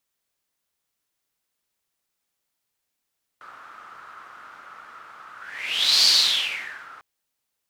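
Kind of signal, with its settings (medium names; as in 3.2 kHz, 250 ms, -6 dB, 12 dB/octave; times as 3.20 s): whoosh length 3.60 s, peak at 2.64 s, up 0.77 s, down 0.96 s, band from 1.3 kHz, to 4.5 kHz, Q 7, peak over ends 27.5 dB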